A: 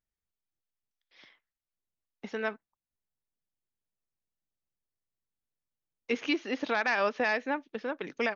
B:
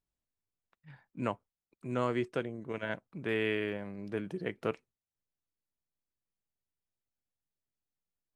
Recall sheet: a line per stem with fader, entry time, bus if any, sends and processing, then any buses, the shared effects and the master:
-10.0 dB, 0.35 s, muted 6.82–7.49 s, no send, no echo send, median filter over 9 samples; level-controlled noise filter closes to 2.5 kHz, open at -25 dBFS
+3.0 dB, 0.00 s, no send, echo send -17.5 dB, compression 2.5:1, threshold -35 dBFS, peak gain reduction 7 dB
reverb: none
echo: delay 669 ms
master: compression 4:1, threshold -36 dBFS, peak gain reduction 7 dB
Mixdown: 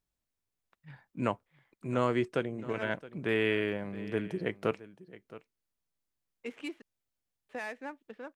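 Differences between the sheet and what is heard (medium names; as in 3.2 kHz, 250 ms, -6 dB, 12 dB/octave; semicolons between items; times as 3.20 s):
stem B: missing compression 2.5:1, threshold -35 dBFS, peak gain reduction 7 dB; master: missing compression 4:1, threshold -36 dBFS, peak gain reduction 7 dB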